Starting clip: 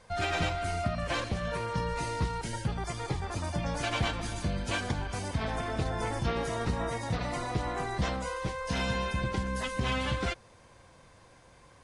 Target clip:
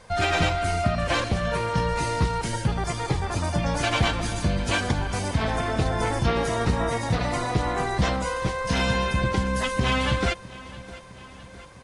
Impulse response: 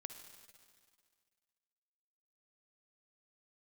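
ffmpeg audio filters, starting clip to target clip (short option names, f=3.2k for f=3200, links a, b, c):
-af "aecho=1:1:658|1316|1974|2632|3290:0.112|0.0673|0.0404|0.0242|0.0145,volume=7.5dB"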